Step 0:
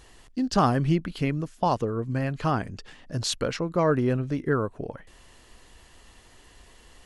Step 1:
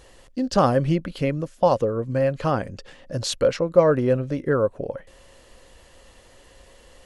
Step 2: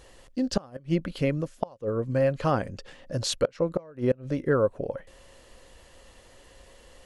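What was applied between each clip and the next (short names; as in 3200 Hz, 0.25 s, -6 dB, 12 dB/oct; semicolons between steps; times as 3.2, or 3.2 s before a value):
bell 540 Hz +14.5 dB 0.26 oct; gain +1 dB
flipped gate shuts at -10 dBFS, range -28 dB; gain -2 dB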